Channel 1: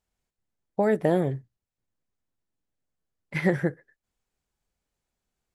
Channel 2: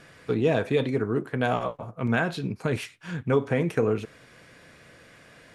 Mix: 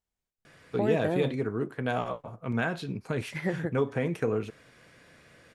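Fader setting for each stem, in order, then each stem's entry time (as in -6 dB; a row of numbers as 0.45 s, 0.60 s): -7.0 dB, -4.5 dB; 0.00 s, 0.45 s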